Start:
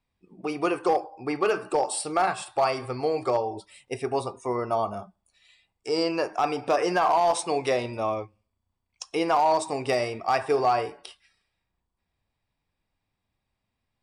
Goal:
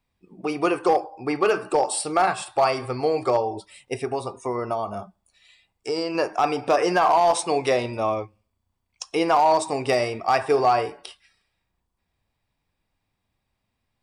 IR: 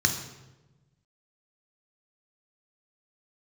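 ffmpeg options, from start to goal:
-filter_complex "[0:a]asettb=1/sr,asplit=3[link_01][link_02][link_03];[link_01]atrim=end=4.024[link_04];[link_02]atrim=start=4.02:end=6.15,asetpts=PTS-STARTPTS,afade=type=in:duration=0.004:curve=qsin,afade=type=out:start_time=2.126:duration=0.004:curve=qsin,acompressor=threshold=-26dB:ratio=6[link_05];[link_03]atrim=start=6.146[link_06];[link_04][link_05]acrossfade=duration=0.004:curve1=hsin:curve2=qsin[link_07];[link_07][link_06]acrossfade=duration=0.004:curve1=qsin:curve2=hsin,volume=3.5dB"

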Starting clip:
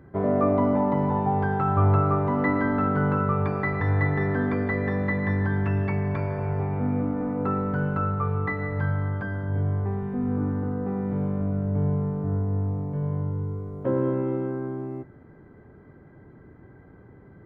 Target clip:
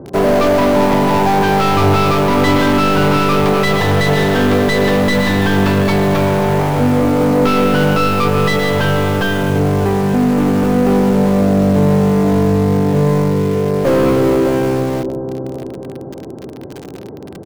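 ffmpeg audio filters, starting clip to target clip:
ffmpeg -i in.wav -filter_complex "[0:a]asplit=2[link_01][link_02];[link_02]highpass=frequency=720:poles=1,volume=29dB,asoftclip=type=tanh:threshold=-9.5dB[link_03];[link_01][link_03]amix=inputs=2:normalize=0,lowpass=frequency=2700:poles=1,volume=-6dB,acrossover=split=780[link_04][link_05];[link_04]aecho=1:1:614|1228|1842|2456|3070:0.422|0.177|0.0744|0.0312|0.0131[link_06];[link_05]acrusher=bits=3:dc=4:mix=0:aa=0.000001[link_07];[link_06][link_07]amix=inputs=2:normalize=0,volume=5dB" out.wav

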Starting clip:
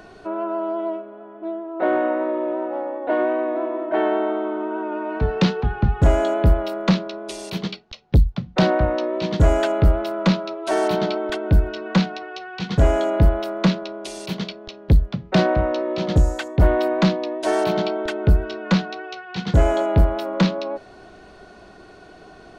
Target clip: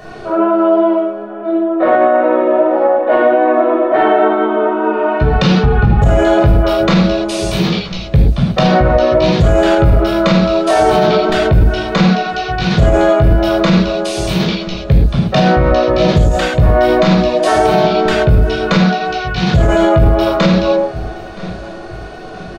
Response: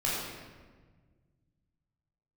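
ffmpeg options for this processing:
-filter_complex "[0:a]aecho=1:1:972|1944|2916:0.0794|0.0357|0.0161[link_01];[1:a]atrim=start_sample=2205,atrim=end_sample=6174[link_02];[link_01][link_02]afir=irnorm=-1:irlink=0,alimiter=limit=-8dB:level=0:latency=1:release=82,volume=6dB"

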